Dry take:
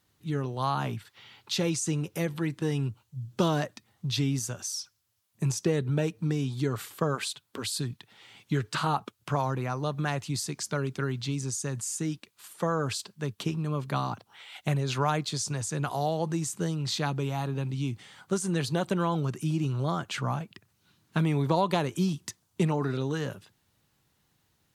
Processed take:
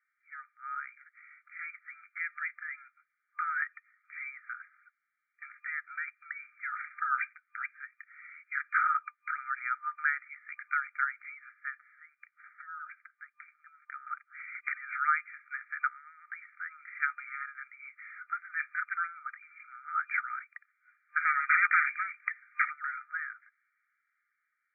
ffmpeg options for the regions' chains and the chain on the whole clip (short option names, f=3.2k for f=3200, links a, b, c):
-filter_complex "[0:a]asettb=1/sr,asplit=3[a][b][c];[a]atrim=end=11.784[d];[b]atrim=start=11.78:end=14.07,asetpts=PTS-STARTPTS,afade=t=in:d=0.004:c=qsin,afade=t=out:st=2.286:d=0.004:c=qsin,lowpass=f=2.1k:w=0.5412,lowpass=f=2.1k:w=1.3066,acompressor=threshold=-46dB:ratio=2:attack=3.2:release=140:knee=1:detection=peak,afreqshift=-36[e];[c]atrim=start=14.066[f];[d][e]acrossfade=d=0.004:c1=hsin:c2=qsin[g];[g][f]acrossfade=d=0.004:c1=qsin:c2=hsin,asettb=1/sr,asplit=3[h][i][j];[h]atrim=end=21.214[k];[i]atrim=start=21.21:end=22.68,asetpts=PTS-STARTPTS,afade=t=in:d=0.004:c=qsin,afade=t=out:st=1.466:d=0.004:c=qsin,bandreject=f=1.3k:w=6.3,aeval=exprs='0.266*sin(PI/2*7.94*val(0)/0.266)':c=same,acompressor=threshold=-33dB:ratio=2:attack=3.2:release=140:knee=1:detection=peak[l];[j]atrim=start=22.676[m];[k][l]acrossfade=d=0.004:c1=hsin:c2=qsin[n];[n][m]acrossfade=d=0.004:c1=qsin:c2=hsin,afftfilt=real='re*between(b*sr/4096,1200,2400)':imag='im*between(b*sr/4096,1200,2400)':win_size=4096:overlap=0.75,dynaudnorm=f=420:g=9:m=8dB"